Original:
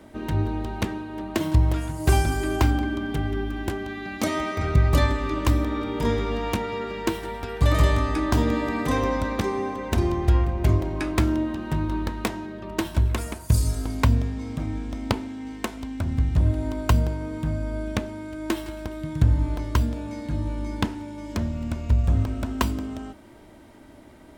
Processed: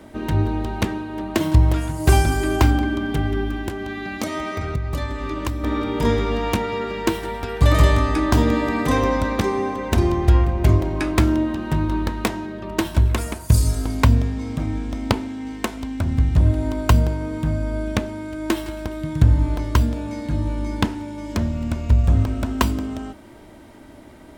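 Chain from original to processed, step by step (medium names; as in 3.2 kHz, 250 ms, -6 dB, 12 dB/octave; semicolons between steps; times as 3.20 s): 3.55–5.64 s: compression 4:1, threshold -28 dBFS, peak gain reduction 13 dB; trim +4.5 dB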